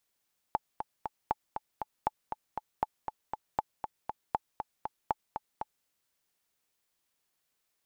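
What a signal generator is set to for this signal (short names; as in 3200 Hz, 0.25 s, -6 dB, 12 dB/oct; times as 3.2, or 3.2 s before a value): metronome 237 bpm, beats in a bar 3, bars 7, 862 Hz, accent 7 dB -14 dBFS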